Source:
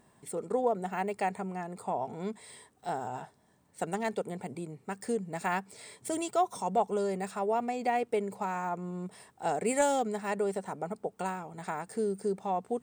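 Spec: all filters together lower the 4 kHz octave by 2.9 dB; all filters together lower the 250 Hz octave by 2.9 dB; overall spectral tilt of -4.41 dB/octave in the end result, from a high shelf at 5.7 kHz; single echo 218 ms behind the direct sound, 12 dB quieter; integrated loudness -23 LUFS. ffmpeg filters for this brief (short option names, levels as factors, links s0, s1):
-af "equalizer=f=250:t=o:g=-4,equalizer=f=4000:t=o:g=-6,highshelf=f=5700:g=5.5,aecho=1:1:218:0.251,volume=3.55"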